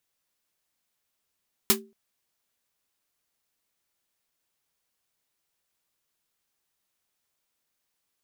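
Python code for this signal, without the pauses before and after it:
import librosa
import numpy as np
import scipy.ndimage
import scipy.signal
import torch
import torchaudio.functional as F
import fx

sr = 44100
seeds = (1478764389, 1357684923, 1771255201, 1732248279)

y = fx.drum_snare(sr, seeds[0], length_s=0.23, hz=220.0, second_hz=390.0, noise_db=10.5, noise_from_hz=790.0, decay_s=0.33, noise_decay_s=0.12)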